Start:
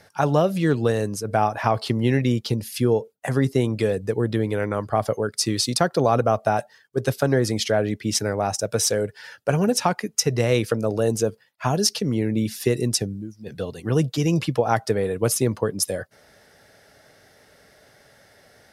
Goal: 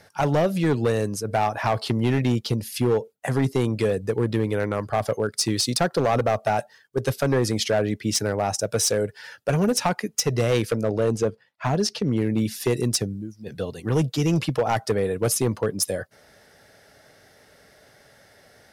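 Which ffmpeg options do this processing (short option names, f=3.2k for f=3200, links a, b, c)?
-filter_complex "[0:a]asettb=1/sr,asplit=3[a][b][c];[a]atrim=end=10.834[d];[b]atrim=start=10.83:end=12.17,asetpts=PTS-STARTPTS,afade=t=in:d=0.004:c=qsin,afade=t=out:st=1.336:d=0.004:c=qsin,aemphasis=mode=reproduction:type=50fm[e];[c]atrim=start=12.166[f];[d][e]acrossfade=d=0.004:c1=hsin:c2=qsin[g];[g][f]acrossfade=d=0.004:c1=qsin:c2=hsin,asoftclip=type=hard:threshold=-15dB"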